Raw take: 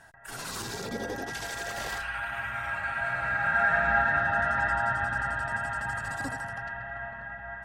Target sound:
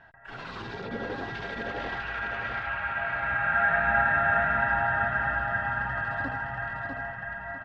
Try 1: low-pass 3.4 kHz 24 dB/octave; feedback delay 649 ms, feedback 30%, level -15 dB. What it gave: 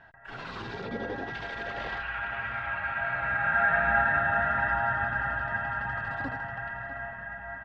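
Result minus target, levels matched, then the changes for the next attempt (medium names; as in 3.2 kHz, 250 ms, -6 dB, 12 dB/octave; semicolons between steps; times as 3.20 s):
echo-to-direct -11 dB
change: feedback delay 649 ms, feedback 30%, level -4 dB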